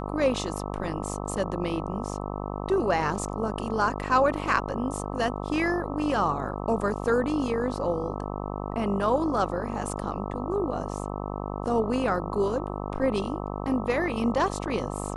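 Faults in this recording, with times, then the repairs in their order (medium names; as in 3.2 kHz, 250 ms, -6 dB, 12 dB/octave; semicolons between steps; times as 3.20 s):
buzz 50 Hz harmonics 26 -33 dBFS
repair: de-hum 50 Hz, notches 26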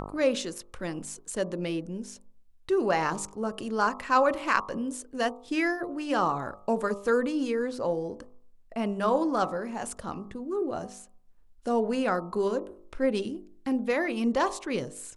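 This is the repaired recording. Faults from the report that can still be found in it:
nothing left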